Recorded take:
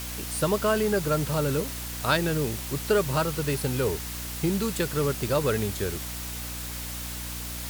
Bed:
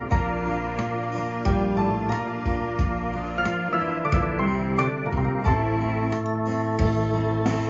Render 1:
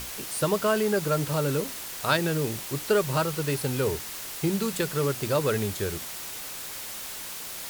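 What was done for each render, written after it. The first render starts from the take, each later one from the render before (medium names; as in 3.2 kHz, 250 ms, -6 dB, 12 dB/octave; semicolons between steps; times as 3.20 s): hum notches 60/120/180/240/300 Hz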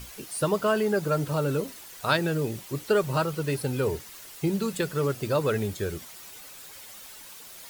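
noise reduction 10 dB, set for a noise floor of -38 dBFS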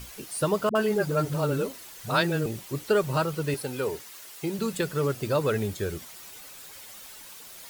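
0.69–2.46 s: phase dispersion highs, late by 62 ms, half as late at 350 Hz; 3.54–4.59 s: high-pass 350 Hz 6 dB/octave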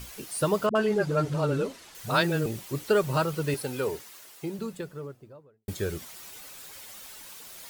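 0.66–1.95 s: distance through air 52 m; 3.71–5.68 s: studio fade out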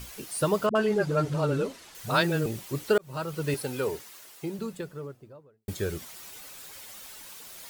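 2.98–3.51 s: fade in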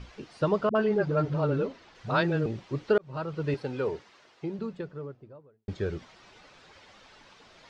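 low-pass 5.5 kHz 24 dB/octave; treble shelf 3 kHz -11.5 dB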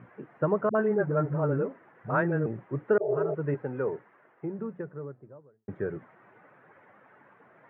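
elliptic band-pass 120–1800 Hz, stop band 40 dB; 3.04–3.31 s: spectral replace 360–940 Hz before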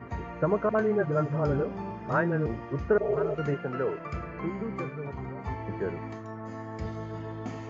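add bed -14 dB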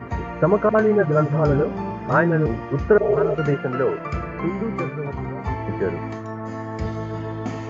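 trim +8.5 dB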